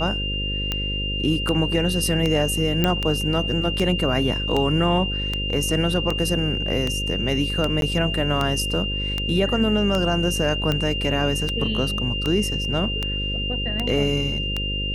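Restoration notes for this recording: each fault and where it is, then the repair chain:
buzz 50 Hz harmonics 11 -28 dBFS
tick 78 rpm -10 dBFS
tone 2800 Hz -26 dBFS
2.84 pop -6 dBFS
7.81–7.82 gap 12 ms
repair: de-click; de-hum 50 Hz, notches 11; notch 2800 Hz, Q 30; interpolate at 7.81, 12 ms

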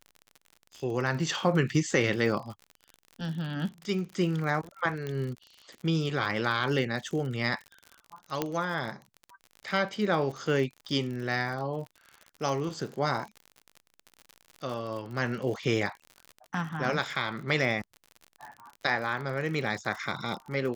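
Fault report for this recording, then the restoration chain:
crackle 59/s -36 dBFS
5.07 pop -22 dBFS
8.42 pop -13 dBFS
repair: de-click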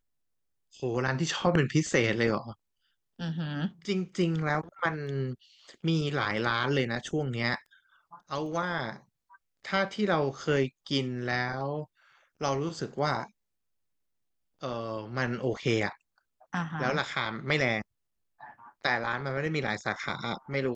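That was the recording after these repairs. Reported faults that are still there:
5.07 pop

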